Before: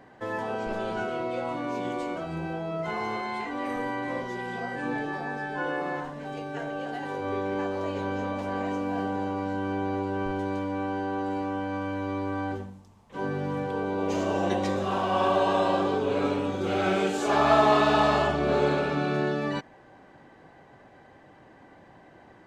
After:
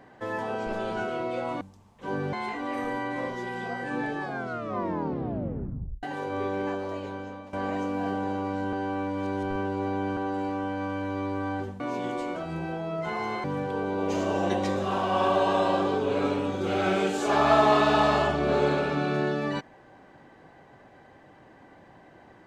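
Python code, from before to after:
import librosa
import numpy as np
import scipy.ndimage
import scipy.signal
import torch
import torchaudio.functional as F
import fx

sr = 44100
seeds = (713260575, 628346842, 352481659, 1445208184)

y = fx.edit(x, sr, fx.swap(start_s=1.61, length_s=1.64, other_s=12.72, other_length_s=0.72),
    fx.tape_stop(start_s=5.13, length_s=1.82),
    fx.fade_out_to(start_s=7.5, length_s=0.95, floor_db=-15.0),
    fx.reverse_span(start_s=9.65, length_s=1.44), tone=tone)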